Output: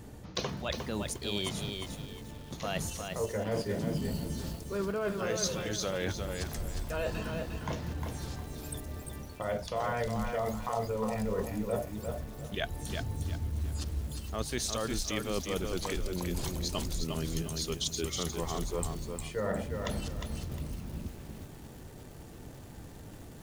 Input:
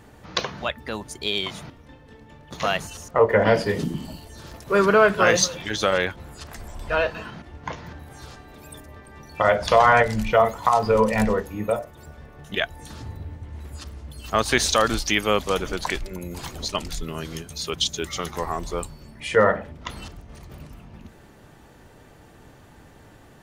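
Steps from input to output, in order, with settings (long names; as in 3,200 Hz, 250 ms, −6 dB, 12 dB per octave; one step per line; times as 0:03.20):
parametric band 1,500 Hz −10.5 dB 2.9 octaves
reversed playback
downward compressor 8 to 1, threshold −34 dBFS, peak gain reduction 17.5 dB
reversed playback
feedback echo at a low word length 356 ms, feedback 35%, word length 9 bits, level −4.5 dB
level +3.5 dB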